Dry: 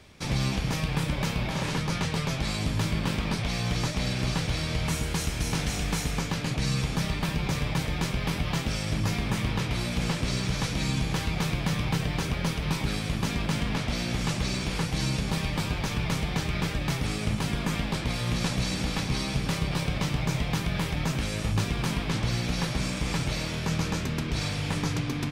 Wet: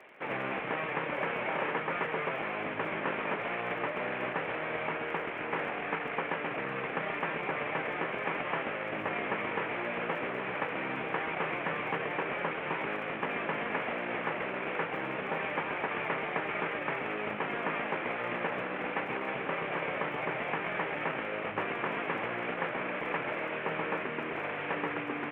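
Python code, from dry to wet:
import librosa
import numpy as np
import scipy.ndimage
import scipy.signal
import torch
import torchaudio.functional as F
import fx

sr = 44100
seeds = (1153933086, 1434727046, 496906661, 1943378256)

y = fx.cvsd(x, sr, bps=16000)
y = scipy.signal.sosfilt(scipy.signal.cheby1(2, 1.0, [430.0, 2200.0], 'bandpass', fs=sr, output='sos'), y)
y = fx.dmg_crackle(y, sr, seeds[0], per_s=19.0, level_db=-54.0)
y = y * 10.0 ** (3.5 / 20.0)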